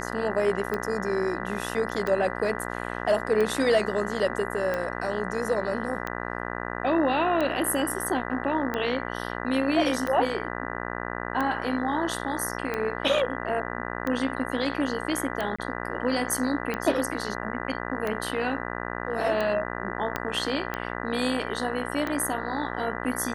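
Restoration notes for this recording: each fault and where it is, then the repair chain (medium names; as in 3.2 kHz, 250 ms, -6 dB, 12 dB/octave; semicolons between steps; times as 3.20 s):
buzz 60 Hz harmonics 33 -33 dBFS
tick 45 rpm -16 dBFS
15.56–15.59 s: dropout 25 ms
20.16 s: pop -12 dBFS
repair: de-click; de-hum 60 Hz, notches 33; interpolate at 15.56 s, 25 ms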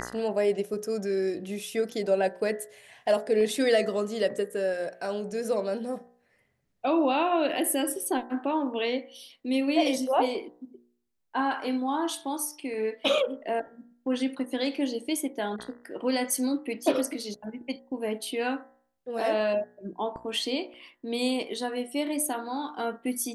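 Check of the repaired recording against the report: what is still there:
20.16 s: pop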